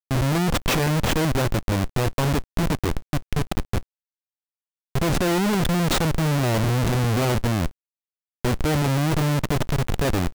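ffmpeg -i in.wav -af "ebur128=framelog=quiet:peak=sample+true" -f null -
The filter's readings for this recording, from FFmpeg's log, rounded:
Integrated loudness:
  I:         -23.1 LUFS
  Threshold: -33.2 LUFS
Loudness range:
  LRA:         4.8 LU
  Threshold: -43.9 LUFS
  LRA low:   -26.9 LUFS
  LRA high:  -22.1 LUFS
Sample peak:
  Peak:      -14.1 dBFS
True peak:
  Peak:      -13.0 dBFS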